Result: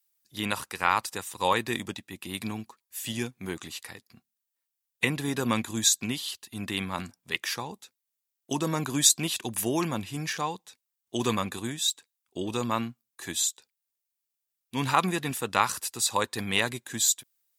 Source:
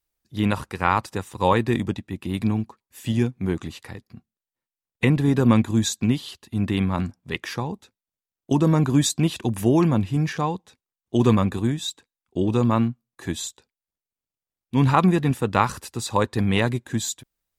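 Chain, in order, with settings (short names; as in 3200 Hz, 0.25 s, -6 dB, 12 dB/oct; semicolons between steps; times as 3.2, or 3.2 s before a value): tilt +3.5 dB/oct; gain -4 dB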